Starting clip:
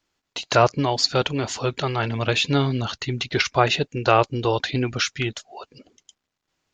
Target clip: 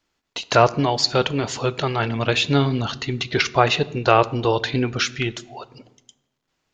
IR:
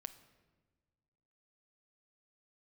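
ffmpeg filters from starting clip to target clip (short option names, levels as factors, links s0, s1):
-filter_complex "[0:a]asplit=2[s0][s1];[1:a]atrim=start_sample=2205,asetrate=66150,aresample=44100,highshelf=f=6800:g=-7.5[s2];[s1][s2]afir=irnorm=-1:irlink=0,volume=3.16[s3];[s0][s3]amix=inputs=2:normalize=0,volume=0.562"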